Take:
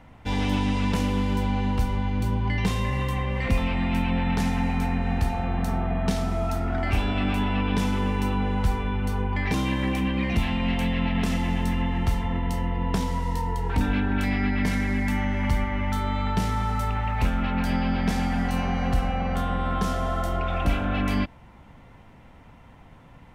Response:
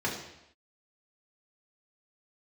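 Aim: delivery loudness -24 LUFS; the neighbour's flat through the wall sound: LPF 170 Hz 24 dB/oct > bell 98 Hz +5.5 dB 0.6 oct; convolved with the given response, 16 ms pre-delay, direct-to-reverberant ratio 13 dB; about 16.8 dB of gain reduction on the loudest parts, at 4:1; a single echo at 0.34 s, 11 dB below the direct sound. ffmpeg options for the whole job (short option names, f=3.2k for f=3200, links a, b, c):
-filter_complex "[0:a]acompressor=threshold=-39dB:ratio=4,aecho=1:1:340:0.282,asplit=2[a][b];[1:a]atrim=start_sample=2205,adelay=16[c];[b][c]afir=irnorm=-1:irlink=0,volume=-21.5dB[d];[a][d]amix=inputs=2:normalize=0,lowpass=f=170:w=0.5412,lowpass=f=170:w=1.3066,equalizer=f=98:t=o:w=0.6:g=5.5,volume=17dB"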